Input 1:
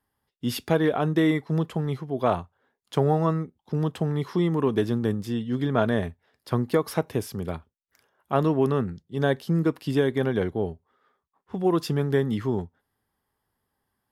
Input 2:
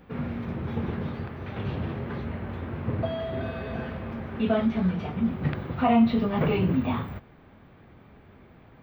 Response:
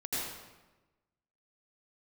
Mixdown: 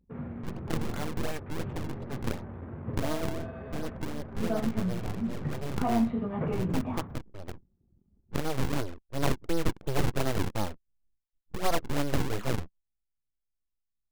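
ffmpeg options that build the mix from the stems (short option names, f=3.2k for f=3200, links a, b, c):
-filter_complex "[0:a]aeval=exprs='abs(val(0))':c=same,deesser=0.85,acrusher=samples=41:mix=1:aa=0.000001:lfo=1:lforange=65.6:lforate=2.8,volume=-1.5dB,afade=t=in:st=8.28:d=0.76:silence=0.446684[a];[1:a]acrossover=split=2800[b][c];[c]acompressor=threshold=-54dB:ratio=4:attack=1:release=60[d];[b][d]amix=inputs=2:normalize=0,equalizer=f=3.8k:w=0.64:g=-7.5,volume=-6.5dB[e];[a][e]amix=inputs=2:normalize=0,anlmdn=0.01"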